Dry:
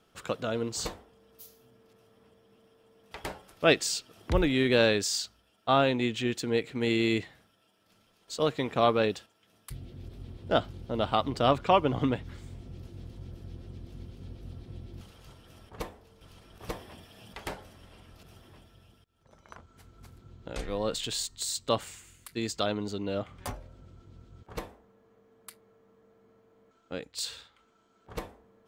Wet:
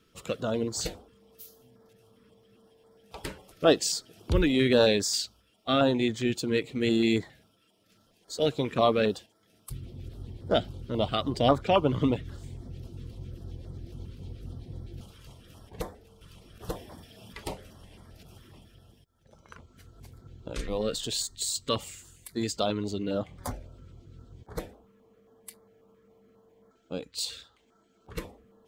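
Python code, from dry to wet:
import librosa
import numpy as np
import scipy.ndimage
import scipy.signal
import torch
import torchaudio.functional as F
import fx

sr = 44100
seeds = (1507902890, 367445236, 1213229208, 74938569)

y = fx.spec_quant(x, sr, step_db=15)
y = fx.filter_held_notch(y, sr, hz=7.4, low_hz=750.0, high_hz=2700.0)
y = y * librosa.db_to_amplitude(3.0)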